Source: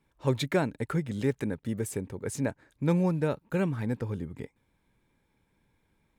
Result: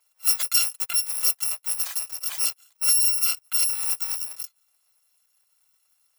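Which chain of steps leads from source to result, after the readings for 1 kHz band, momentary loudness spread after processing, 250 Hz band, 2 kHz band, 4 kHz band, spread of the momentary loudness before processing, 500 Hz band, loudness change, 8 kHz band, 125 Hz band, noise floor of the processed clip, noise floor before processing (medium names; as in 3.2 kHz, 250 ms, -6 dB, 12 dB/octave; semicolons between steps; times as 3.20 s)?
-4.0 dB, 10 LU, under -40 dB, +2.0 dB, +17.5 dB, 9 LU, under -20 dB, +9.0 dB, +22.5 dB, under -40 dB, -70 dBFS, -73 dBFS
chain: bit-reversed sample order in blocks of 256 samples; inverse Chebyshev high-pass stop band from 150 Hz, stop band 70 dB; trim +5 dB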